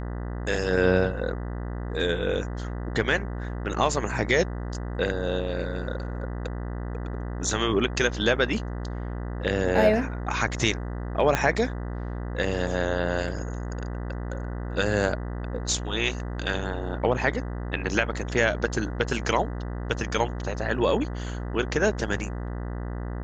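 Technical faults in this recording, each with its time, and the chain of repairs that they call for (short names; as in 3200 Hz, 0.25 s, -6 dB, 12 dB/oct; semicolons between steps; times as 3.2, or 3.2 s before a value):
buzz 60 Hz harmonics 33 -32 dBFS
11.35 pop -8 dBFS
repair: de-click; de-hum 60 Hz, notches 33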